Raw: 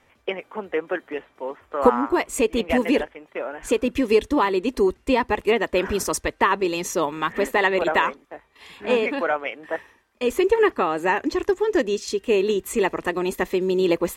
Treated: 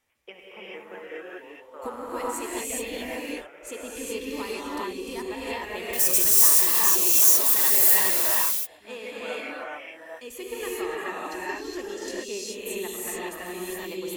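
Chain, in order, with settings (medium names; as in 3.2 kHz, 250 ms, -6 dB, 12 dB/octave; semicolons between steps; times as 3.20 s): 5.93–8.23 s: zero-crossing glitches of -12 dBFS; pre-emphasis filter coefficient 0.8; gated-style reverb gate 450 ms rising, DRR -7 dB; trim -6 dB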